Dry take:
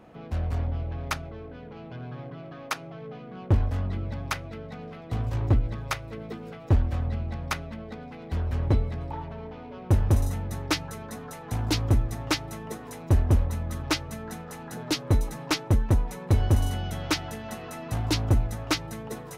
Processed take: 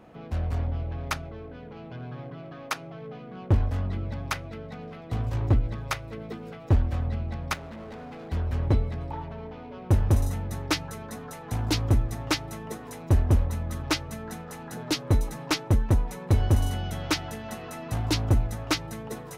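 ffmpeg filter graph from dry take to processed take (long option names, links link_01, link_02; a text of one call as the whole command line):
ffmpeg -i in.wav -filter_complex "[0:a]asettb=1/sr,asplit=3[link_01][link_02][link_03];[link_01]atrim=end=7.544[link_04];[link_02]atrim=start=7.54:end=8.3,asetpts=PTS-STARTPTS,afade=type=in:duration=0.004:curve=qsin,afade=type=out:start_time=0.756:duration=0.004:curve=qsin,equalizer=frequency=610:width_type=o:width=2.9:gain=4.5,asoftclip=type=hard:threshold=-38dB[link_05];[link_03]atrim=start=8.296[link_06];[link_04][link_05]acrossfade=duration=0.004:curve1=hsin:curve2=qsin[link_07];[link_07][link_06]acrossfade=duration=0.004:curve1=qsin:curve2=hsin" out.wav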